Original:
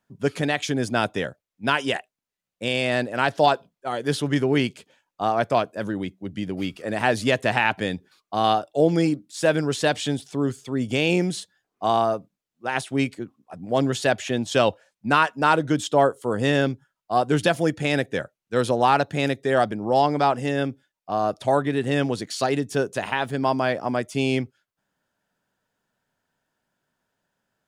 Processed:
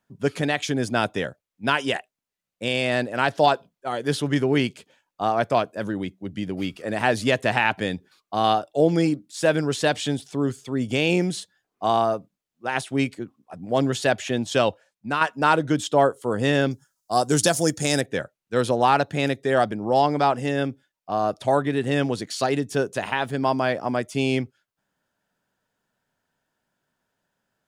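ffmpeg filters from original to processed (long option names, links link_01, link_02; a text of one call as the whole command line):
ffmpeg -i in.wav -filter_complex "[0:a]asettb=1/sr,asplit=3[link_01][link_02][link_03];[link_01]atrim=end=16.714[link_04];[link_02]atrim=start=16.71:end=18.01,asetpts=PTS-STARTPTS,afade=type=in:duration=0.004:curve=qsin,afade=type=out:start_time=1.296:duration=0.004:curve=qsin,highshelf=frequency=4200:width_type=q:width=1.5:gain=13[link_05];[link_03]atrim=start=18.006[link_06];[link_04][link_05]acrossfade=duration=0.004:curve1=hsin:curve2=qsin[link_07];[link_07][link_06]acrossfade=duration=0.004:curve1=qsin:curve2=hsin,asplit=2[link_08][link_09];[link_08]atrim=end=15.21,asetpts=PTS-STARTPTS,afade=type=out:start_time=14.45:duration=0.76:silence=0.446684[link_10];[link_09]atrim=start=15.21,asetpts=PTS-STARTPTS,afade=type=in:duration=0.004:curve=hsin:silence=0.446684[link_11];[link_10][link_11]concat=n=2:v=0:a=1" out.wav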